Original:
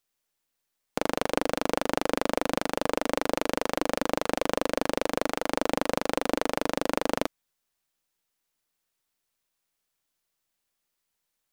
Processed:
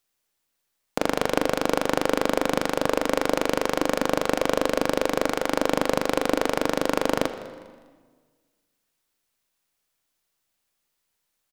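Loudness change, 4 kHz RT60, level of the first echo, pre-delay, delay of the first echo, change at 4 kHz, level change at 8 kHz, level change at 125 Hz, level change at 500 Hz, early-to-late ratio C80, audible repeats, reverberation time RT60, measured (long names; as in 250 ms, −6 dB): +4.0 dB, 1.2 s, −20.5 dB, 20 ms, 202 ms, +3.5 dB, +3.5 dB, +4.5 dB, +4.5 dB, 12.0 dB, 2, 1.5 s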